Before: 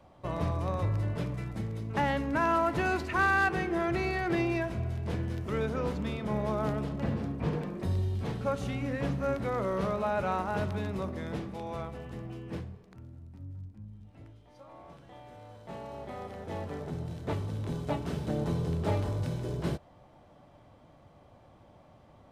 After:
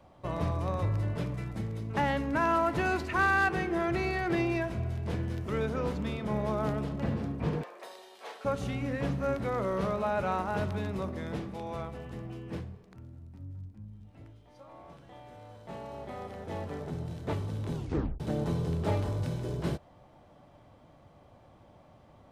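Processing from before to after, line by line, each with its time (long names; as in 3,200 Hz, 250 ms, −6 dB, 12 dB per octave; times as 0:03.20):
0:07.63–0:08.45: high-pass filter 550 Hz 24 dB per octave
0:17.75: tape stop 0.45 s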